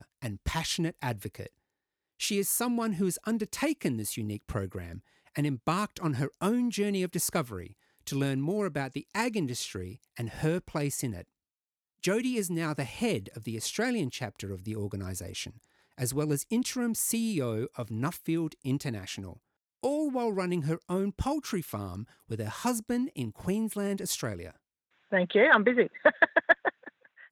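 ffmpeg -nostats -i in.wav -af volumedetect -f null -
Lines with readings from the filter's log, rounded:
mean_volume: -31.2 dB
max_volume: -10.1 dB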